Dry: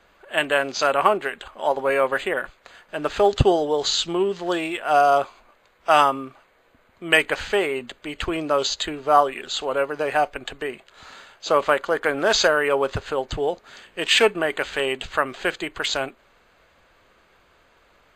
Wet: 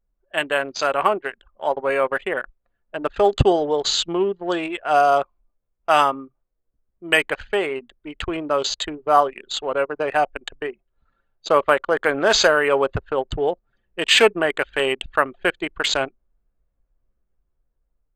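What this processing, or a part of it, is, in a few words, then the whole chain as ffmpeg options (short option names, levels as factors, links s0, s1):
voice memo with heavy noise removal: -af "anlmdn=100,dynaudnorm=f=720:g=5:m=3.76,volume=0.891"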